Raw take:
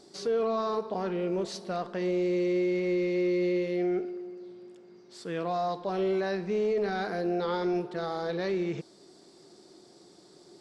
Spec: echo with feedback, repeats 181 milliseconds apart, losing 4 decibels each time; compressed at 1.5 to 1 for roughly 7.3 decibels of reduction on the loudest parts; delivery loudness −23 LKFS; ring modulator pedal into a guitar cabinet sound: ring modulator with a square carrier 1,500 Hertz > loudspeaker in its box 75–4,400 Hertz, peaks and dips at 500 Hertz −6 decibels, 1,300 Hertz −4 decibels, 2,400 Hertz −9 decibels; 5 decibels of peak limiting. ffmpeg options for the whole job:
ffmpeg -i in.wav -af "acompressor=threshold=-46dB:ratio=1.5,alimiter=level_in=8.5dB:limit=-24dB:level=0:latency=1,volume=-8.5dB,aecho=1:1:181|362|543|724|905|1086|1267|1448|1629:0.631|0.398|0.25|0.158|0.0994|0.0626|0.0394|0.0249|0.0157,aeval=exprs='val(0)*sgn(sin(2*PI*1500*n/s))':channel_layout=same,highpass=75,equalizer=frequency=500:width_type=q:width=4:gain=-6,equalizer=frequency=1300:width_type=q:width=4:gain=-4,equalizer=frequency=2400:width_type=q:width=4:gain=-9,lowpass=frequency=4400:width=0.5412,lowpass=frequency=4400:width=1.3066,volume=16.5dB" out.wav

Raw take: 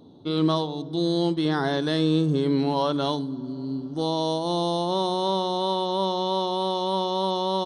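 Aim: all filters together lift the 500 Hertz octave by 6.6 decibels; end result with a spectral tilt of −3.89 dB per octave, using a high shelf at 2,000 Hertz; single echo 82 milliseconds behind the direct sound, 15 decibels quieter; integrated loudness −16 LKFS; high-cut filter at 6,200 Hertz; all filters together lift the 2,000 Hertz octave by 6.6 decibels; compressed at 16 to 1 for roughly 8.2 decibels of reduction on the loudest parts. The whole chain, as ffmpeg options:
ffmpeg -i in.wav -af "lowpass=6200,equalizer=frequency=500:width_type=o:gain=7.5,highshelf=frequency=2000:gain=8.5,equalizer=frequency=2000:width_type=o:gain=3.5,acompressor=threshold=-22dB:ratio=16,aecho=1:1:82:0.178,volume=11dB" out.wav

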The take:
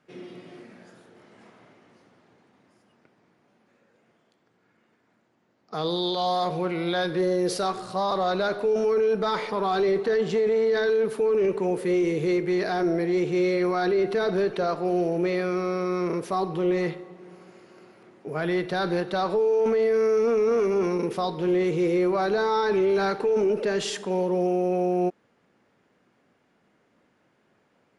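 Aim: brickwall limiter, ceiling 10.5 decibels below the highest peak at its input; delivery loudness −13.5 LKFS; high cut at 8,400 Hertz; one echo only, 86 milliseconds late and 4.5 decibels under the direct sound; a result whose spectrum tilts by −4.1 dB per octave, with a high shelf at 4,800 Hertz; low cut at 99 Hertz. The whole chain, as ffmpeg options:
ffmpeg -i in.wav -af "highpass=99,lowpass=8400,highshelf=frequency=4800:gain=7,alimiter=level_in=1.5dB:limit=-24dB:level=0:latency=1,volume=-1.5dB,aecho=1:1:86:0.596,volume=17.5dB" out.wav

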